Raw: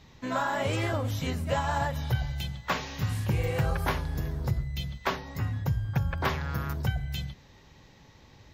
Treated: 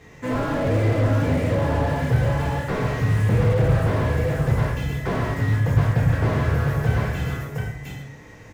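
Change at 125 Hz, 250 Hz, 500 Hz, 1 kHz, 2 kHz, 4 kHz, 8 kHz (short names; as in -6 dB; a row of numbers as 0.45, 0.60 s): +10.5 dB, +10.5 dB, +10.0 dB, +3.5 dB, +5.5 dB, -0.5 dB, n/a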